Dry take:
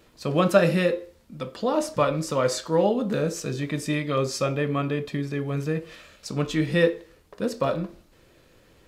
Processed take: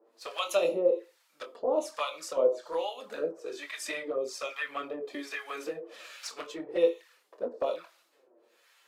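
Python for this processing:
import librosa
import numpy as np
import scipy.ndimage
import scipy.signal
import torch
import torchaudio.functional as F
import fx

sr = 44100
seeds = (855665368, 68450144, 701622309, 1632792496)

y = scipy.signal.sosfilt(scipy.signal.butter(4, 390.0, 'highpass', fs=sr, output='sos'), x)
y = fx.env_flanger(y, sr, rest_ms=9.3, full_db=-21.5)
y = fx.harmonic_tremolo(y, sr, hz=1.2, depth_pct=100, crossover_hz=900.0)
y = fx.doubler(y, sr, ms=24.0, db=-9.5)
y = fx.band_squash(y, sr, depth_pct=70, at=(3.86, 6.3))
y = y * 10.0 ** (2.0 / 20.0)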